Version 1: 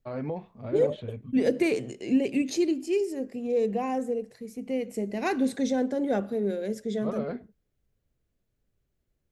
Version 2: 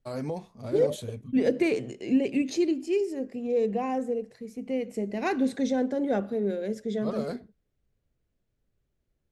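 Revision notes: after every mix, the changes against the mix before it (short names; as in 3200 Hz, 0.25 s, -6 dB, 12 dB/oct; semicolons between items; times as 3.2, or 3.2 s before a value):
first voice: remove LPF 2900 Hz 24 dB/oct; master: add high shelf 9400 Hz -11 dB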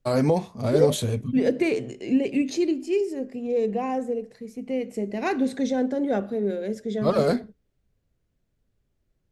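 first voice +12.0 dB; reverb: on, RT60 0.40 s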